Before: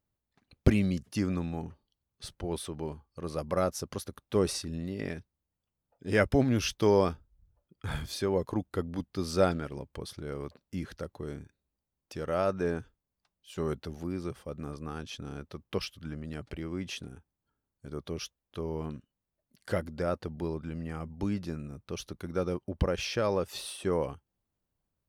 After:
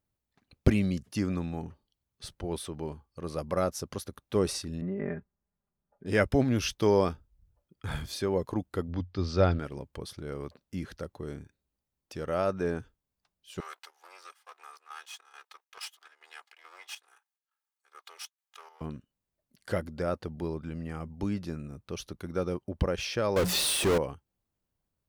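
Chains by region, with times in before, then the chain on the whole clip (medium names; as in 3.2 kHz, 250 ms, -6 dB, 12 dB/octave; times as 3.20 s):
4.81–6.06 s: low-pass 1.8 kHz 24 dB/octave + comb 5 ms, depth 78%
8.88–9.59 s: low-pass 5.3 kHz 24 dB/octave + peaking EQ 90 Hz +11 dB 0.32 oct
13.60–18.81 s: comb filter that takes the minimum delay 2.4 ms + high-pass 890 Hz 24 dB/octave + square tremolo 2.3 Hz, depth 65%, duty 70%
23.36–23.98 s: AM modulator 150 Hz, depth 35% + hum notches 60/120/180 Hz + power-law waveshaper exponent 0.35
whole clip: none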